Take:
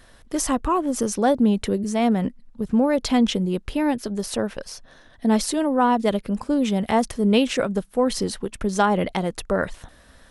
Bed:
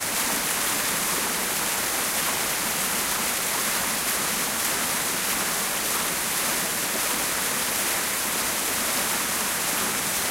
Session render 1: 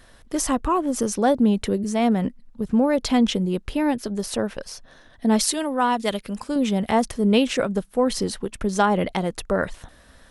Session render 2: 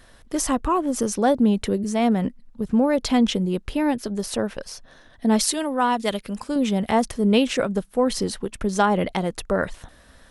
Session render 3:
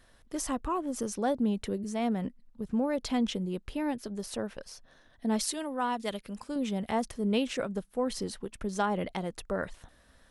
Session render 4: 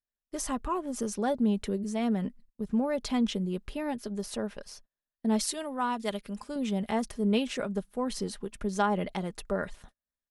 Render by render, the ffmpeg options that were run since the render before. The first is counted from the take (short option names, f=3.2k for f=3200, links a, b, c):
-filter_complex "[0:a]asettb=1/sr,asplit=3[a][b][c];[a]atrim=end=5.394[d];[b]atrim=start=5.39:end=6.56,asetpts=PTS-STARTPTS,afade=t=in:d=0.004:c=qsin,afade=t=out:st=1.166:d=0.004:c=qsin,tiltshelf=f=1.2k:g=-5.5[e];[c]atrim=start=6.556[f];[d][e]acrossfade=d=0.004:c1=hsin:c2=qsin[g];[g][f]acrossfade=d=0.004:c1=qsin:c2=hsin"
-af anull
-af "volume=-10dB"
-af "agate=range=-39dB:threshold=-50dB:ratio=16:detection=peak,aecho=1:1:4.9:0.35"